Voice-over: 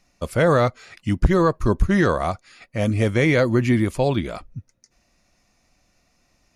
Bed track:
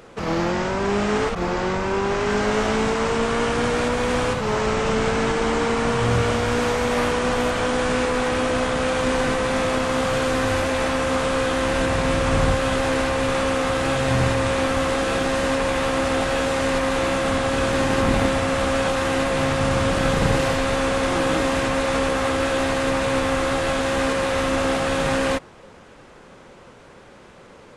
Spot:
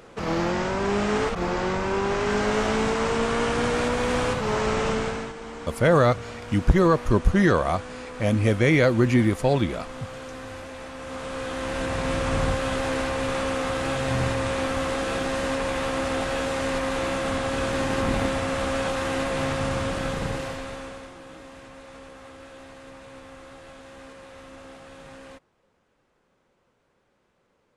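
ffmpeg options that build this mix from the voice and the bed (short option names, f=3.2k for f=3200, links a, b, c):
-filter_complex "[0:a]adelay=5450,volume=-1dB[a];[1:a]volume=9dB,afade=t=out:st=4.84:d=0.49:silence=0.199526,afade=t=in:st=10.94:d=1.22:silence=0.266073,afade=t=out:st=19.51:d=1.63:silence=0.125893[b];[a][b]amix=inputs=2:normalize=0"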